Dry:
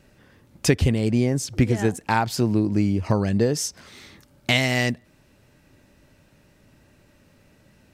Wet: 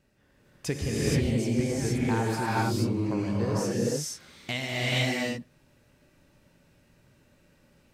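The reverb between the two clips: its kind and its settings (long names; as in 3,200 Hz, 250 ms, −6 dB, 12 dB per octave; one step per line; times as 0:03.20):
reverb whose tail is shaped and stops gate 500 ms rising, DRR −7 dB
level −12.5 dB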